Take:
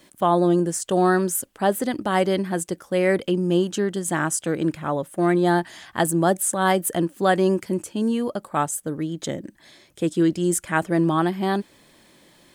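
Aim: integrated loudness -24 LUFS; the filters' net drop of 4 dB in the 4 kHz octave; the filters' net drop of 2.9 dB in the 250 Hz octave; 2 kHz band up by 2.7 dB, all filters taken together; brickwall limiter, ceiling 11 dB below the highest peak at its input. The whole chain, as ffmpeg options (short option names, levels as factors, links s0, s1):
-af "equalizer=f=250:t=o:g=-5,equalizer=f=2000:t=o:g=5,equalizer=f=4000:t=o:g=-8,volume=1.41,alimiter=limit=0.211:level=0:latency=1"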